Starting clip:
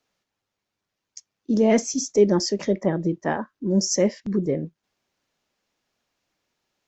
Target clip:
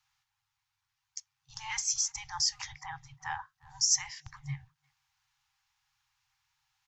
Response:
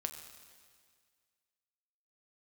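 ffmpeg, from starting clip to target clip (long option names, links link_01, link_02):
-filter_complex "[0:a]asplit=2[link_01][link_02];[link_02]adelay=350,highpass=300,lowpass=3400,asoftclip=type=hard:threshold=-16dB,volume=-29dB[link_03];[link_01][link_03]amix=inputs=2:normalize=0,afftfilt=real='re*(1-between(b*sr/4096,140,760))':imag='im*(1-between(b*sr/4096,140,760))':win_size=4096:overlap=0.75,acrossover=split=370|3000[link_04][link_05][link_06];[link_05]acompressor=threshold=-49dB:ratio=1.5[link_07];[link_04][link_07][link_06]amix=inputs=3:normalize=0"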